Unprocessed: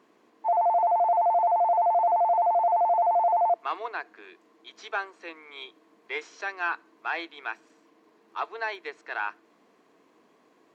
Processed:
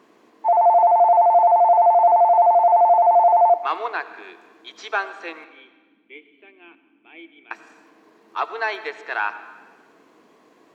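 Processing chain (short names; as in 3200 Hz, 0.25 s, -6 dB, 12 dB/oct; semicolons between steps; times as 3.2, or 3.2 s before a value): 5.44–7.51 vocal tract filter i; digital reverb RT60 1.4 s, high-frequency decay 0.9×, pre-delay 45 ms, DRR 13 dB; gain +7 dB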